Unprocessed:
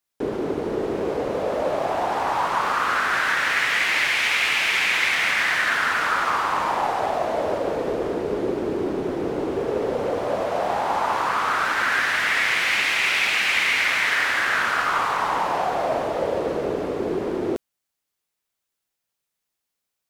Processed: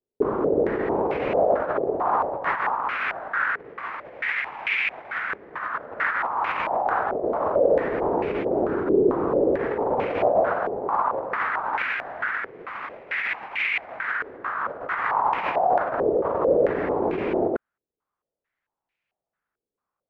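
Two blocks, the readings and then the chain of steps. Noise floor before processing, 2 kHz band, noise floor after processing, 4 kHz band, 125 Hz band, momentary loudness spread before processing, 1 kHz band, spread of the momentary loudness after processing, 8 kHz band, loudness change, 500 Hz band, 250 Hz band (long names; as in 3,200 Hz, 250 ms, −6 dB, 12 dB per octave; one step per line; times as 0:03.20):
−82 dBFS, −7.0 dB, below −85 dBFS, −16.5 dB, −1.5 dB, 7 LU, −1.5 dB, 8 LU, below −30 dB, −3.0 dB, +2.5 dB, +0.5 dB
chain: compressor whose output falls as the input rises −25 dBFS, ratio −0.5
low-pass on a step sequencer 4.5 Hz 430–2,400 Hz
level −3 dB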